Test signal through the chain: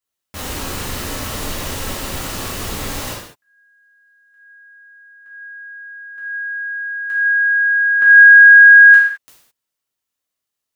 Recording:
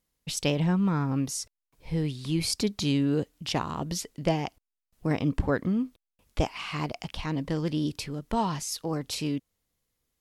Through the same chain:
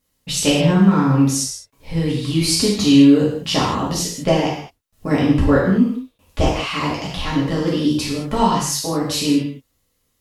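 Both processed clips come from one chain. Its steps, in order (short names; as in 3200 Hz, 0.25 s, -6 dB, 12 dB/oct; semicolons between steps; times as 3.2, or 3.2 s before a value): non-linear reverb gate 0.24 s falling, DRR -6.5 dB; gain +4 dB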